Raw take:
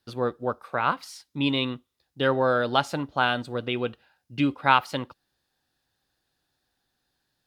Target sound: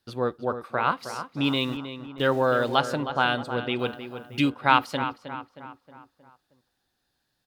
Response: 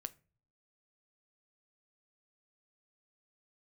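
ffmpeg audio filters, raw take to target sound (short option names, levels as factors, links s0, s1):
-filter_complex "[0:a]asettb=1/sr,asplit=3[s0][s1][s2];[s0]atrim=end=1.444[s3];[s1]atrim=start=1.44:end=2.75,asetpts=PTS-STARTPTS,afade=t=in:d=0.004:c=qsin,afade=t=out:st=1.306:d=0.004:c=qsin,aeval=exprs='val(0)*gte(abs(val(0)),0.00891)':c=same[s4];[s2]atrim=start=2.746[s5];[s3][s4]acrossfade=d=0.004:c1=hsin:c2=qsin[s6];[s6][s5]acrossfade=d=0.004:c1=qsin:c2=hsin,asettb=1/sr,asplit=3[s7][s8][s9];[s7]atrim=end=3.794[s10];[s8]atrim=start=3.79:end=4.5,asetpts=PTS-STARTPTS,afade=t=in:d=0.004:c=qsin,afade=t=out:st=0.706:d=0.004:c=qsin,aemphasis=mode=production:type=75kf[s11];[s9]atrim=start=4.496[s12];[s10][s11]acrossfade=d=0.004:c1=hsin:c2=qsin[s13];[s13][s12]acrossfade=d=0.004:c1=qsin:c2=hsin,asplit=2[s14][s15];[s15]adelay=314,lowpass=f=2600:p=1,volume=0.316,asplit=2[s16][s17];[s17]adelay=314,lowpass=f=2600:p=1,volume=0.5,asplit=2[s18][s19];[s19]adelay=314,lowpass=f=2600:p=1,volume=0.5,asplit=2[s20][s21];[s21]adelay=314,lowpass=f=2600:p=1,volume=0.5,asplit=2[s22][s23];[s23]adelay=314,lowpass=f=2600:p=1,volume=0.5[s24];[s14][s16][s18][s20][s22][s24]amix=inputs=6:normalize=0"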